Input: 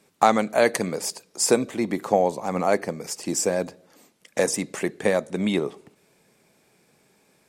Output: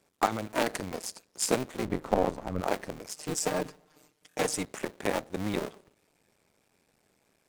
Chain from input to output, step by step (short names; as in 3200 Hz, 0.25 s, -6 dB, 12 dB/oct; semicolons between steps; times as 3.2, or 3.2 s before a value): cycle switcher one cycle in 2, muted; 1.85–2.61 tilt -2 dB/oct; 3.14–4.65 comb 6.6 ms, depth 81%; stuck buffer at 4.29, samples 1024, times 2; gain -5.5 dB